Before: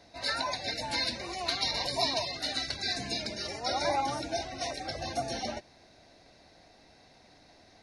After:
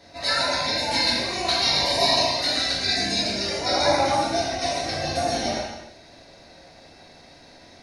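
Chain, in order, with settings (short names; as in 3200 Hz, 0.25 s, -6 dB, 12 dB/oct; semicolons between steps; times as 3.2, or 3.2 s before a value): non-linear reverb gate 0.36 s falling, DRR -5.5 dB; gain +3.5 dB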